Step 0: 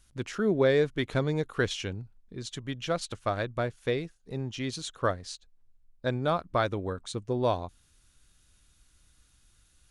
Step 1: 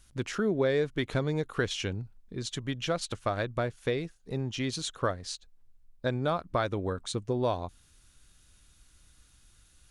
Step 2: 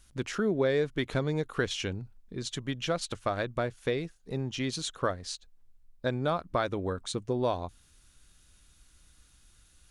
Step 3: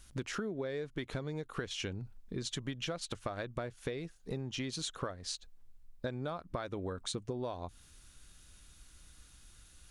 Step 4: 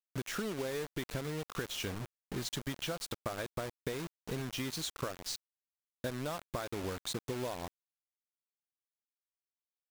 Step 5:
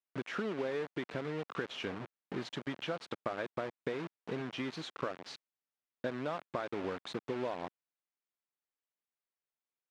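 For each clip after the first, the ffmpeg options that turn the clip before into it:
-af "acompressor=threshold=-31dB:ratio=2,volume=3dB"
-af "equalizer=f=110:w=7.9:g=-7"
-af "acompressor=threshold=-37dB:ratio=12,volume=2.5dB"
-af "acrusher=bits=6:mix=0:aa=0.000001"
-af "highpass=190,lowpass=2.6k,volume=2dB"

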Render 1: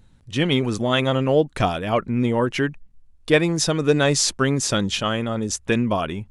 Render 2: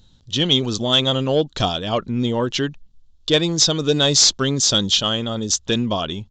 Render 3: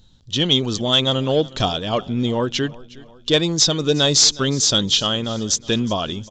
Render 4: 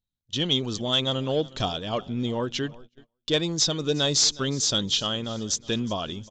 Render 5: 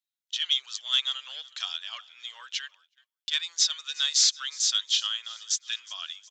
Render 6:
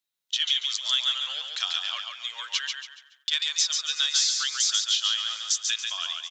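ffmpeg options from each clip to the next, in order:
-af "highshelf=f=2.8k:t=q:w=3:g=7,aresample=16000,asoftclip=type=tanh:threshold=-5dB,aresample=44100"
-af "aecho=1:1:364|728|1092|1456:0.0891|0.0446|0.0223|0.0111"
-af "agate=range=-29dB:threshold=-37dB:ratio=16:detection=peak,volume=-7dB"
-af "highpass=f=1.5k:w=0.5412,highpass=f=1.5k:w=1.3066"
-filter_complex "[0:a]acompressor=threshold=-27dB:ratio=6,asplit=2[a][b];[b]aecho=0:1:141|282|423|564:0.596|0.197|0.0649|0.0214[c];[a][c]amix=inputs=2:normalize=0,volume=5.5dB"

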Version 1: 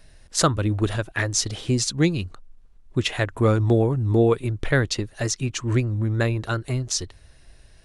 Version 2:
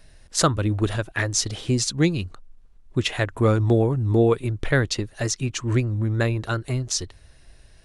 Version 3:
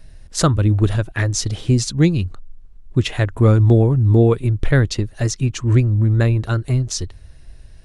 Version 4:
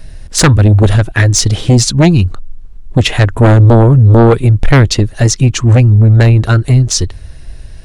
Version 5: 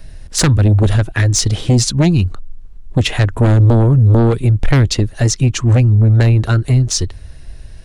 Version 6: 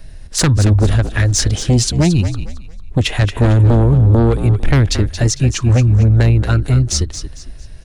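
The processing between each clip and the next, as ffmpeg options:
-af anull
-af "lowshelf=f=240:g=10.5"
-af "aeval=exprs='0.841*sin(PI/2*2.51*val(0)/0.841)':c=same"
-filter_complex "[0:a]acrossover=split=330|3000[a][b][c];[b]acompressor=threshold=-14dB:ratio=6[d];[a][d][c]amix=inputs=3:normalize=0,volume=-4dB"
-filter_complex "[0:a]asplit=5[a][b][c][d][e];[b]adelay=226,afreqshift=-50,volume=-10dB[f];[c]adelay=452,afreqshift=-100,volume=-19.9dB[g];[d]adelay=678,afreqshift=-150,volume=-29.8dB[h];[e]adelay=904,afreqshift=-200,volume=-39.7dB[i];[a][f][g][h][i]amix=inputs=5:normalize=0,volume=-1dB"

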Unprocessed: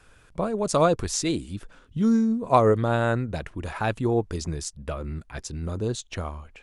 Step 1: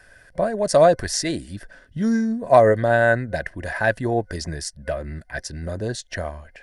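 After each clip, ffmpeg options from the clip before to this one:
-af "superequalizer=8b=2.82:10b=0.708:11b=3.98:14b=2:16b=1.78"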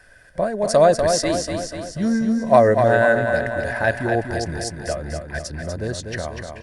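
-af "aecho=1:1:244|488|732|976|1220|1464|1708:0.501|0.286|0.163|0.0928|0.0529|0.0302|0.0172"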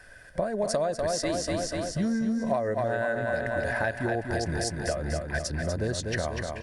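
-af "acompressor=threshold=-24dB:ratio=12"

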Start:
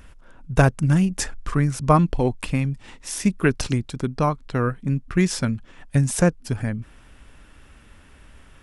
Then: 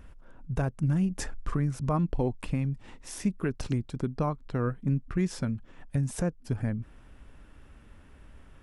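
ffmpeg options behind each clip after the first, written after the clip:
-af "tiltshelf=f=1.4k:g=4.5,alimiter=limit=-11dB:level=0:latency=1:release=306,volume=-7dB"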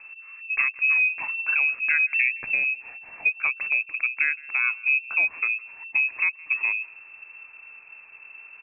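-af "aecho=1:1:166:0.0631,lowpass=f=2.3k:t=q:w=0.5098,lowpass=f=2.3k:t=q:w=0.6013,lowpass=f=2.3k:t=q:w=0.9,lowpass=f=2.3k:t=q:w=2.563,afreqshift=-2700,volume=4.5dB"

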